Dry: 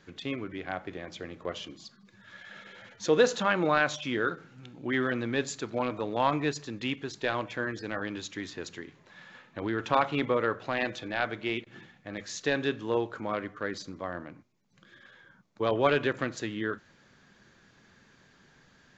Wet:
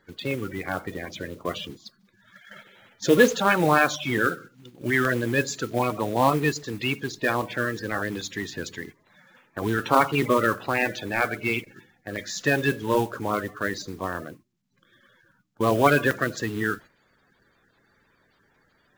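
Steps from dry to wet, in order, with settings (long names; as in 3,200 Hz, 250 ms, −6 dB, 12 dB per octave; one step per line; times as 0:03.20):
spectral magnitudes quantised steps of 30 dB
noise gate −47 dBFS, range −10 dB
noise that follows the level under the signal 21 dB
regular buffer underruns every 0.79 s, samples 64, zero, from 0:00.31
level +6.5 dB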